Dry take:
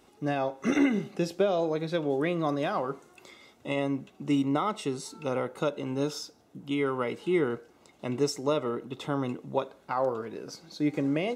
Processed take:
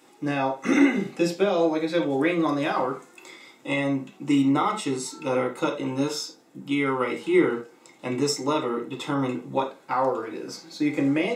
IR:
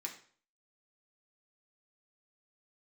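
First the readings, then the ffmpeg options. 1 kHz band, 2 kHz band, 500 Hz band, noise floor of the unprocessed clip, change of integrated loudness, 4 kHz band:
+5.5 dB, +7.0 dB, +3.5 dB, -60 dBFS, +5.0 dB, +6.0 dB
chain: -filter_complex "[0:a]lowshelf=f=110:g=-5[s0];[1:a]atrim=start_sample=2205,afade=t=out:st=0.14:d=0.01,atrim=end_sample=6615[s1];[s0][s1]afir=irnorm=-1:irlink=0,volume=2.66"

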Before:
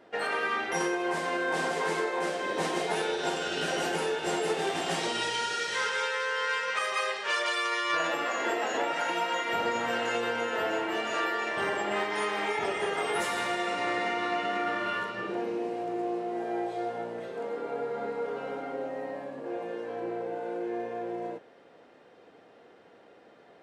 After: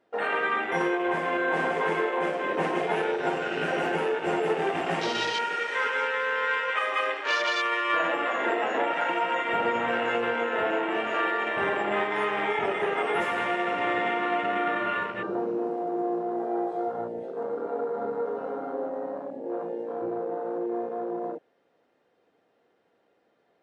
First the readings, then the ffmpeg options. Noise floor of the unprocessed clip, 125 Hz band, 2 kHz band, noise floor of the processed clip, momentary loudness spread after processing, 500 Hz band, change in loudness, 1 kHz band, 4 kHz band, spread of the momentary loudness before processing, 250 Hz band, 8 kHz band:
-56 dBFS, +3.0 dB, +3.0 dB, -69 dBFS, 7 LU, +3.5 dB, +3.0 dB, +3.5 dB, -1.5 dB, 7 LU, +3.5 dB, no reading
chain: -af "afwtdn=0.0178,volume=1.58" -ar 32000 -c:a libmp3lame -b:a 64k

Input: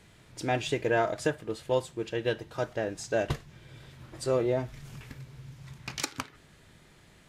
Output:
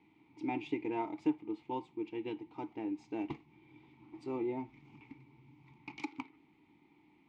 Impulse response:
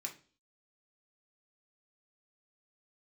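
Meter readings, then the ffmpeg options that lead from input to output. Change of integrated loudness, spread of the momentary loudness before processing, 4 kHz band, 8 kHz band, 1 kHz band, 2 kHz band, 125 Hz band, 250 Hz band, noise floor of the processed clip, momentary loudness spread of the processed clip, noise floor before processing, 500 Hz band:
-8.5 dB, 20 LU, -17.5 dB, under -25 dB, -7.0 dB, -14.5 dB, -16.5 dB, -1.0 dB, -67 dBFS, 19 LU, -58 dBFS, -13.0 dB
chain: -filter_complex "[0:a]adynamicsmooth=sensitivity=5.5:basefreq=6000,asplit=3[s0][s1][s2];[s0]bandpass=f=300:t=q:w=8,volume=1[s3];[s1]bandpass=f=870:t=q:w=8,volume=0.501[s4];[s2]bandpass=f=2240:t=q:w=8,volume=0.355[s5];[s3][s4][s5]amix=inputs=3:normalize=0,volume=1.88"

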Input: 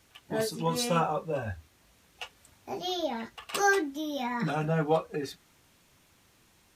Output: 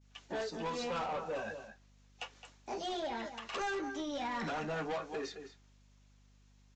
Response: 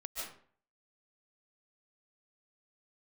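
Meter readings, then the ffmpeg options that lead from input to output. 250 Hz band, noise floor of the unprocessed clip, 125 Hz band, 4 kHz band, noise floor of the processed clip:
-9.0 dB, -64 dBFS, -15.5 dB, -7.0 dB, -64 dBFS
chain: -filter_complex "[0:a]highpass=f=160:w=0.5412,highpass=f=160:w=1.3066,bass=f=250:g=-8,treble=f=4000:g=5,agate=range=0.0224:threshold=0.00224:ratio=3:detection=peak,acrossover=split=880|2800[s0][s1][s2];[s0]acompressor=threshold=0.0251:ratio=4[s3];[s1]acompressor=threshold=0.0224:ratio=4[s4];[s2]acompressor=threshold=0.00355:ratio=4[s5];[s3][s4][s5]amix=inputs=3:normalize=0,asplit=2[s6][s7];[s7]adelay=215.7,volume=0.251,highshelf=f=4000:g=-4.85[s8];[s6][s8]amix=inputs=2:normalize=0,aresample=16000,asoftclip=type=tanh:threshold=0.0224,aresample=44100,aeval=exprs='val(0)+0.000708*(sin(2*PI*50*n/s)+sin(2*PI*2*50*n/s)/2+sin(2*PI*3*50*n/s)/3+sin(2*PI*4*50*n/s)/4+sin(2*PI*5*50*n/s)/5)':c=same"

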